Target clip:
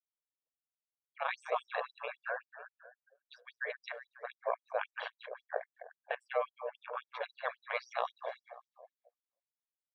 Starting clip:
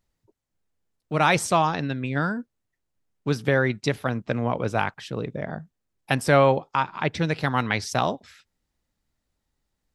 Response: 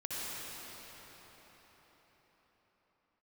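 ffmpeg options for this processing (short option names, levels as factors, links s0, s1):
-filter_complex "[0:a]aecho=1:1:1.8:0.52,areverse,acompressor=threshold=0.0282:ratio=8,areverse,aemphasis=mode=reproduction:type=50kf,acrossover=split=3600[s0][s1];[s1]acompressor=threshold=0.00224:ratio=4:attack=1:release=60[s2];[s0][s2]amix=inputs=2:normalize=0,equalizer=f=580:w=1.7:g=3.5,bandreject=f=5200:w=8.8,aecho=1:1:185|370|555|740|925|1110|1295:0.376|0.207|0.114|0.0625|0.0344|0.0189|0.0104,aeval=exprs='val(0)*sin(2*PI*61*n/s)':c=same,afftdn=nr=28:nf=-55,afftfilt=real='re*gte(b*sr/1024,400*pow(4900/400,0.5+0.5*sin(2*PI*3.7*pts/sr)))':imag='im*gte(b*sr/1024,400*pow(4900/400,0.5+0.5*sin(2*PI*3.7*pts/sr)))':win_size=1024:overlap=0.75,volume=1.58"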